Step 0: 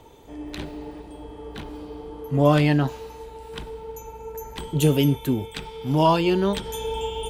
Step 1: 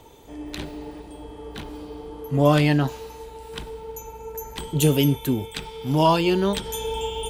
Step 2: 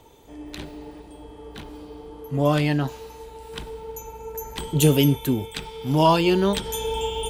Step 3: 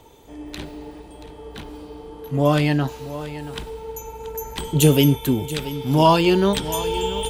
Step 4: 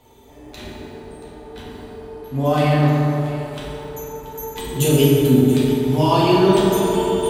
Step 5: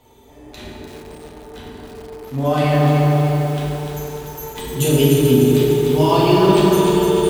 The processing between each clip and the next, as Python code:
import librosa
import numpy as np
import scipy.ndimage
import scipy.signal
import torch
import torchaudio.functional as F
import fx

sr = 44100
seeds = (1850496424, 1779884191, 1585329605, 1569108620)

y1 = fx.high_shelf(x, sr, hz=3900.0, db=5.5)
y2 = fx.rider(y1, sr, range_db=3, speed_s=2.0)
y3 = y2 + 10.0 ** (-14.5 / 20.0) * np.pad(y2, (int(680 * sr / 1000.0), 0))[:len(y2)]
y3 = y3 * 10.0 ** (2.5 / 20.0)
y4 = fx.rev_fdn(y3, sr, rt60_s=3.5, lf_ratio=1.0, hf_ratio=0.4, size_ms=24.0, drr_db=-8.5)
y4 = y4 * 10.0 ** (-7.0 / 20.0)
y5 = fx.echo_crushed(y4, sr, ms=298, feedback_pct=55, bits=6, wet_db=-5.0)